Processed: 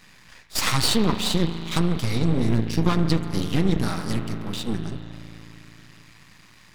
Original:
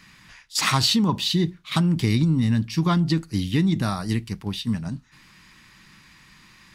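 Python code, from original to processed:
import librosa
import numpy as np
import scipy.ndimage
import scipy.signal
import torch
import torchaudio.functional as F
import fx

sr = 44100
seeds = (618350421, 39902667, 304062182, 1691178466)

y = fx.rev_spring(x, sr, rt60_s=3.5, pass_ms=(36,), chirp_ms=50, drr_db=8.0)
y = np.maximum(y, 0.0)
y = y * 10.0 ** (3.0 / 20.0)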